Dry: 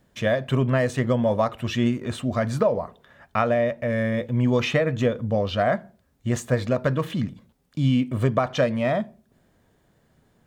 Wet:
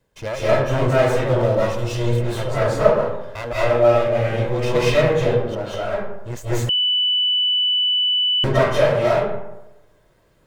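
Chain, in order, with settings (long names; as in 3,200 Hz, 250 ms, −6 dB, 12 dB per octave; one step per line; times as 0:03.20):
lower of the sound and its delayed copy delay 1.9 ms
0:01.22–0:01.95: parametric band 1,300 Hz −7 dB 2.1 octaves
0:03.53–0:04.08: all-pass dispersion highs, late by 123 ms, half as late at 490 Hz
0:05.15–0:05.74: downward compressor 6 to 1, threshold −30 dBFS, peak gain reduction 10.5 dB
convolution reverb RT60 0.90 s, pre-delay 153 ms, DRR −10 dB
0:06.69–0:08.44: beep over 2,980 Hz −11.5 dBFS
level −4 dB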